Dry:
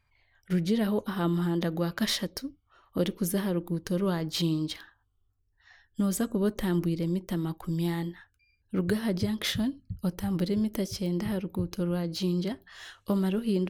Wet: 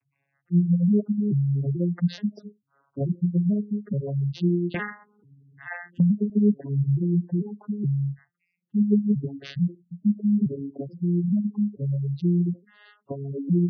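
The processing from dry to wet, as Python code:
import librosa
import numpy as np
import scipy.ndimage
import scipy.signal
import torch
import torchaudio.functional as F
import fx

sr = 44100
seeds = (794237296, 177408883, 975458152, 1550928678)

y = fx.vocoder_arp(x, sr, chord='major triad', root=49, every_ms=435)
y = fx.spec_gate(y, sr, threshold_db=-15, keep='strong')
y = fx.band_squash(y, sr, depth_pct=100, at=(4.74, 6.3))
y = y * 10.0 ** (6.0 / 20.0)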